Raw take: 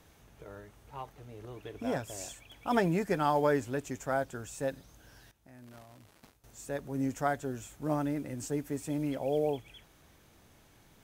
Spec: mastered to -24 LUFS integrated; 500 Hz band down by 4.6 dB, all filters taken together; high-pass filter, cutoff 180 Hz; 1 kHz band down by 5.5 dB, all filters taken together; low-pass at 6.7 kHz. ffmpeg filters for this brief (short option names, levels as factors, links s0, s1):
-af "highpass=180,lowpass=6700,equalizer=f=500:t=o:g=-4,equalizer=f=1000:t=o:g=-6,volume=4.47"